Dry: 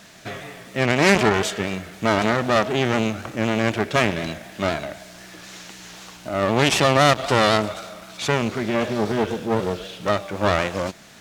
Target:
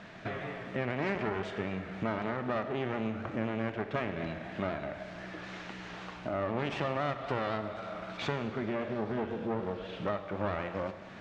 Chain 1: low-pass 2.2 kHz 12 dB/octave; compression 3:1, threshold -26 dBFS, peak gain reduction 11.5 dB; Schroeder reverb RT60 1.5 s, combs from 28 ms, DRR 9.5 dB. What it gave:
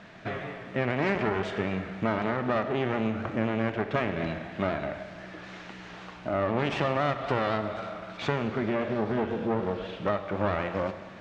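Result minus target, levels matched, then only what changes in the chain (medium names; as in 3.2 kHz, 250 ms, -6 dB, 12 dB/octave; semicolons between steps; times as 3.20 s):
compression: peak gain reduction -5.5 dB
change: compression 3:1, threshold -34.5 dBFS, peak gain reduction 17.5 dB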